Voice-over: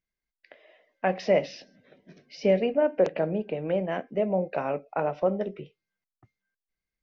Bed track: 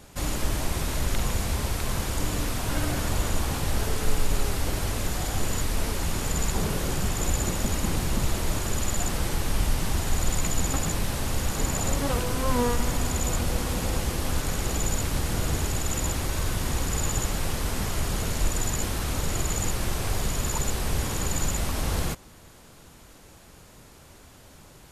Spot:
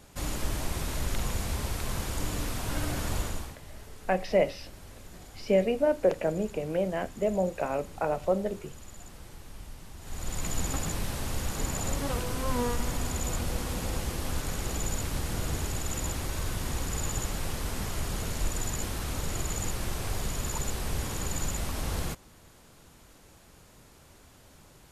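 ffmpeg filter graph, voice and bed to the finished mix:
ffmpeg -i stem1.wav -i stem2.wav -filter_complex "[0:a]adelay=3050,volume=-1.5dB[link_01];[1:a]volume=10.5dB,afade=type=out:start_time=3.17:duration=0.39:silence=0.16788,afade=type=in:start_time=9.99:duration=0.56:silence=0.177828[link_02];[link_01][link_02]amix=inputs=2:normalize=0" out.wav

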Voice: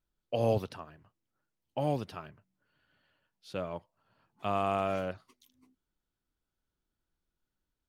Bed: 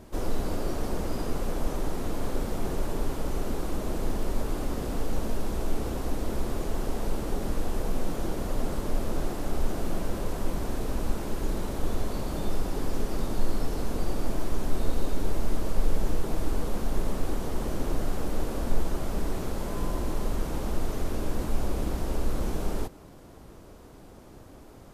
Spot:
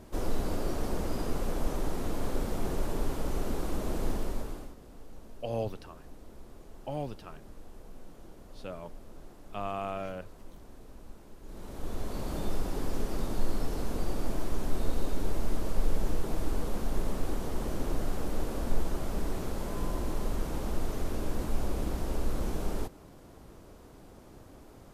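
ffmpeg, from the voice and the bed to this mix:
ffmpeg -i stem1.wav -i stem2.wav -filter_complex "[0:a]adelay=5100,volume=-5dB[link_01];[1:a]volume=15dB,afade=type=out:start_time=4.1:duration=0.65:silence=0.125893,afade=type=in:start_time=11.43:duration=0.89:silence=0.141254[link_02];[link_01][link_02]amix=inputs=2:normalize=0" out.wav

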